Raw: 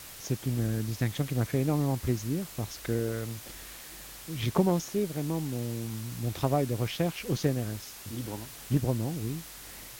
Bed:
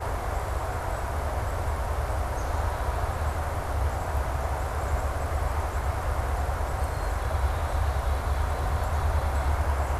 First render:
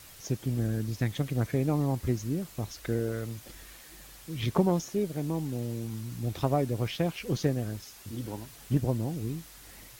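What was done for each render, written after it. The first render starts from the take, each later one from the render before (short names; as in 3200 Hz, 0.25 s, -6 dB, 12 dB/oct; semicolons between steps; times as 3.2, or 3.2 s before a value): denoiser 6 dB, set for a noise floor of -46 dBFS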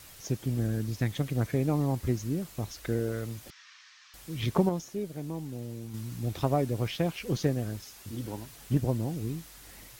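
3.5–4.14 elliptic band-pass 1100–5800 Hz; 4.69–5.94 gain -5 dB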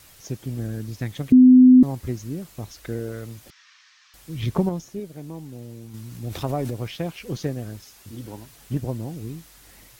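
1.32–1.83 bleep 254 Hz -7 dBFS; 4.29–5 low shelf 190 Hz +7.5 dB; 6.11–6.73 transient shaper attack 0 dB, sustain +8 dB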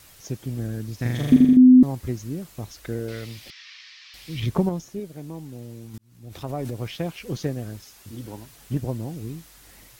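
0.96–1.57 flutter echo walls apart 7.1 m, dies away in 1.4 s; 3.08–4.4 band shelf 3200 Hz +11 dB; 5.98–6.9 fade in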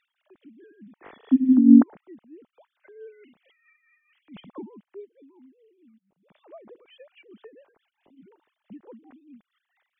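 sine-wave speech; tremolo 4.6 Hz, depth 66%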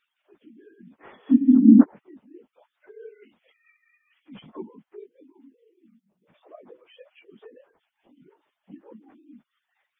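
phase scrambler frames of 50 ms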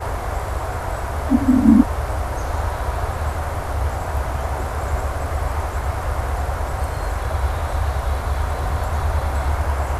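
add bed +5 dB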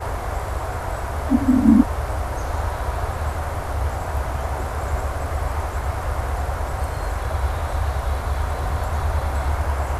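gain -1.5 dB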